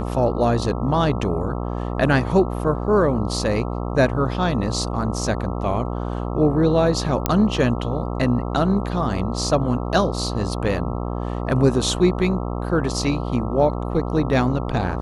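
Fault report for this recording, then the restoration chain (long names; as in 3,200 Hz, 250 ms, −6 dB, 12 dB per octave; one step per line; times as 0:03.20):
mains buzz 60 Hz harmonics 22 −26 dBFS
0:07.26: click −3 dBFS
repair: click removal
hum removal 60 Hz, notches 22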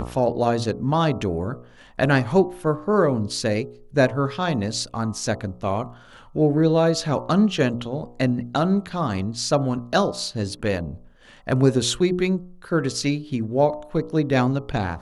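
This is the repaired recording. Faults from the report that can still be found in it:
none of them is left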